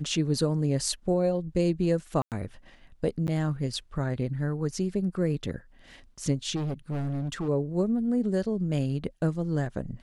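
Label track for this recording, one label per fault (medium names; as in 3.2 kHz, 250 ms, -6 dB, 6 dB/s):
2.220000	2.320000	dropout 98 ms
3.270000	3.280000	dropout 9.7 ms
6.550000	7.490000	clipped -27.5 dBFS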